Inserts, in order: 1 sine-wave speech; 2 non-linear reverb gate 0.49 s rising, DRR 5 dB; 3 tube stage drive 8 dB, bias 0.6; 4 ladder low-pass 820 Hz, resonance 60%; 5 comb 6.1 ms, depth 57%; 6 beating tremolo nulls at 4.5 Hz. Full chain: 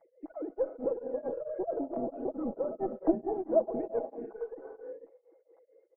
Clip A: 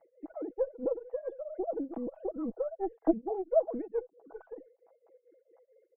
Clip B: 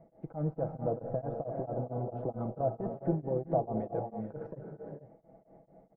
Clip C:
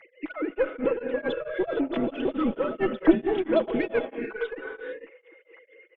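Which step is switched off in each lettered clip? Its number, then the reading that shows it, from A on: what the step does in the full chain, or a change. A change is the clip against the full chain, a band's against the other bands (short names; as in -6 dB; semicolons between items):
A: 2, momentary loudness spread change +2 LU; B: 1, 125 Hz band +21.5 dB; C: 4, 125 Hz band +5.0 dB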